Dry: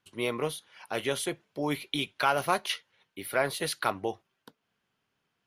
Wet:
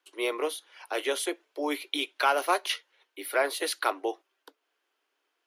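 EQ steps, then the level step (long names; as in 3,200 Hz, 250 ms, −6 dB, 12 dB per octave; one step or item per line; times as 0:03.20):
Butterworth high-pass 290 Hz 72 dB per octave
+1.5 dB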